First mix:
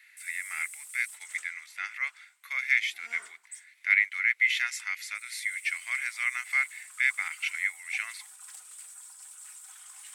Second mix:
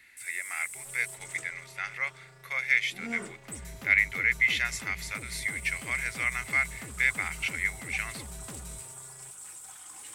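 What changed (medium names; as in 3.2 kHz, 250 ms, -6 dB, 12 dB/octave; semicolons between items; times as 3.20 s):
first sound: send +6.0 dB; second sound: unmuted; master: remove Chebyshev high-pass 1.5 kHz, order 2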